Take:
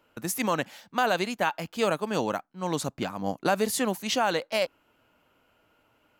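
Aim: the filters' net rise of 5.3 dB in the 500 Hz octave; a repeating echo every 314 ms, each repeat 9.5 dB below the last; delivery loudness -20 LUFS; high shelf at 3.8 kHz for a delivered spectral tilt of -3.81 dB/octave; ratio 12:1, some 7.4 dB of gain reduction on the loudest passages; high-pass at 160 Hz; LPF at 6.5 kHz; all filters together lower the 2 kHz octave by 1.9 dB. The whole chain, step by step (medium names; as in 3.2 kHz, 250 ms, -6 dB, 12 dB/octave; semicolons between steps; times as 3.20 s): high-pass 160 Hz; low-pass 6.5 kHz; peaking EQ 500 Hz +6.5 dB; peaking EQ 2 kHz -4 dB; treble shelf 3.8 kHz +3 dB; compression 12:1, threshold -24 dBFS; feedback delay 314 ms, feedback 33%, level -9.5 dB; trim +10.5 dB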